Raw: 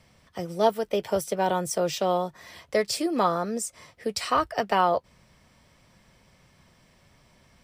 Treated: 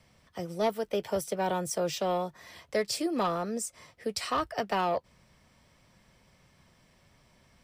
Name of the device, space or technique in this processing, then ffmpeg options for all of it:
one-band saturation: -filter_complex "[0:a]acrossover=split=390|3400[link_01][link_02][link_03];[link_02]asoftclip=type=tanh:threshold=-19.5dB[link_04];[link_01][link_04][link_03]amix=inputs=3:normalize=0,volume=-3.5dB"

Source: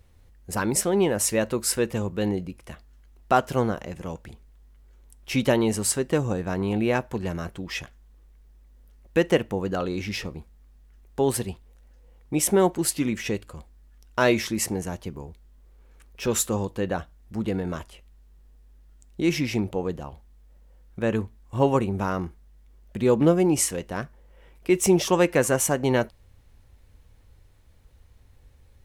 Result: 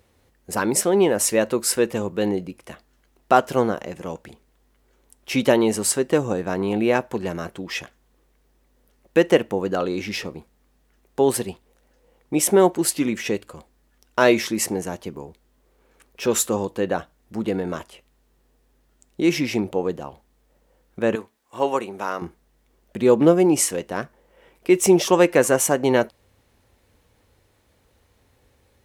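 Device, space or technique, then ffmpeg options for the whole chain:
filter by subtraction: -filter_complex "[0:a]asettb=1/sr,asplit=3[link_01][link_02][link_03];[link_01]atrim=end=21.154[link_04];[link_02]atrim=start=21.15:end=22.22,asetpts=PTS-STARTPTS,afade=type=in:duration=0.004:curve=qsin,afade=type=out:start_time=1.066:duration=0.004:curve=qsin,highpass=frequency=780:poles=1[link_05];[link_03]atrim=start=22.216[link_06];[link_04][link_05]acrossfade=duration=0.004:curve1=hsin:curve2=qsin[link_07];[link_07][link_06]acrossfade=duration=0.004:curve1=qsin:curve2=hsin,asplit=2[link_08][link_09];[link_09]lowpass=370,volume=-1[link_10];[link_08][link_10]amix=inputs=2:normalize=0,volume=3dB"

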